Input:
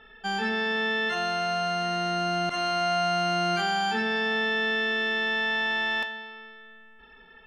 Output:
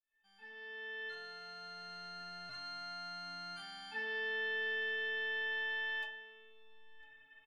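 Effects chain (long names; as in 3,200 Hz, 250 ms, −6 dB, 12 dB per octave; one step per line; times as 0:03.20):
fade in at the beginning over 1.98 s
parametric band 410 Hz −13.5 dB 0.93 octaves
stiff-string resonator 130 Hz, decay 0.62 s, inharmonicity 0.03
on a send: single-tap delay 1,001 ms −22.5 dB
on the sum: level +1 dB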